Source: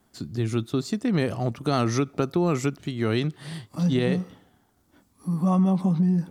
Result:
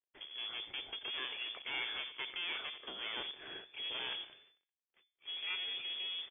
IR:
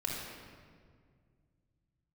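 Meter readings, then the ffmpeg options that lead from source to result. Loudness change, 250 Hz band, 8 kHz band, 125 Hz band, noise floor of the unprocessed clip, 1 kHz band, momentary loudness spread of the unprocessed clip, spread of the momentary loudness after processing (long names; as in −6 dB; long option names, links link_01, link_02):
−14.5 dB, −38.0 dB, below −40 dB, below −40 dB, −65 dBFS, −18.0 dB, 9 LU, 7 LU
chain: -af "aeval=exprs='if(lt(val(0),0),0.708*val(0),val(0))':channel_layout=same,aecho=1:1:85|170|255:0.119|0.0452|0.0172,agate=range=-13dB:threshold=-57dB:ratio=16:detection=peak,aeval=exprs='(tanh(31.6*val(0)+0.35)-tanh(0.35))/31.6':channel_layout=same,lowshelf=frequency=670:width_type=q:width=1.5:gain=-7,acrusher=bits=9:dc=4:mix=0:aa=0.000001,bandreject=frequency=142.5:width_type=h:width=4,bandreject=frequency=285:width_type=h:width=4,bandreject=frequency=427.5:width_type=h:width=4,bandreject=frequency=570:width_type=h:width=4,bandreject=frequency=712.5:width_type=h:width=4,bandreject=frequency=855:width_type=h:width=4,bandreject=frequency=997.5:width_type=h:width=4,bandreject=frequency=1140:width_type=h:width=4,bandreject=frequency=1282.5:width_type=h:width=4,bandreject=frequency=1425:width_type=h:width=4,bandreject=frequency=1567.5:width_type=h:width=4,bandreject=frequency=1710:width_type=h:width=4,bandreject=frequency=1852.5:width_type=h:width=4,lowpass=frequency=3000:width_type=q:width=0.5098,lowpass=frequency=3000:width_type=q:width=0.6013,lowpass=frequency=3000:width_type=q:width=0.9,lowpass=frequency=3000:width_type=q:width=2.563,afreqshift=-3500,equalizer=frequency=380:width_type=o:width=1:gain=12,volume=-2.5dB"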